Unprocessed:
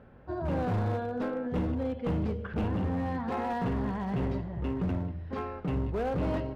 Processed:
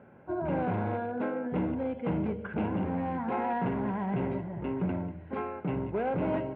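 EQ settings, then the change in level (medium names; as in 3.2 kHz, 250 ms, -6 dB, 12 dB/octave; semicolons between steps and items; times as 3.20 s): cabinet simulation 170–2300 Hz, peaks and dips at 260 Hz -4 dB, 480 Hz -6 dB, 720 Hz -3 dB, 1.2 kHz -10 dB; bass shelf 420 Hz -3 dB; band-stop 1.8 kHz, Q 6.3; +6.5 dB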